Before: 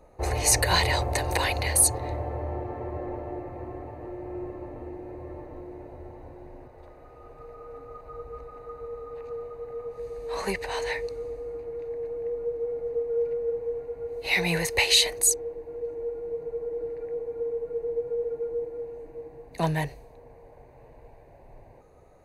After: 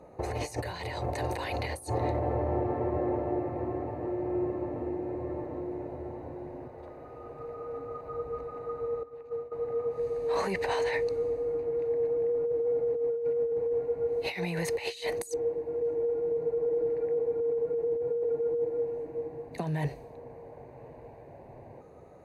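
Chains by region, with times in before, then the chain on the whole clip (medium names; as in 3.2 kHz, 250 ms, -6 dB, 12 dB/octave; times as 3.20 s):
9.03–9.52 s: expander -31 dBFS + upward compressor, threshold -49 dBFS
whole clip: compressor with a negative ratio -31 dBFS, ratio -1; high-pass 140 Hz 12 dB/octave; tilt EQ -2 dB/octave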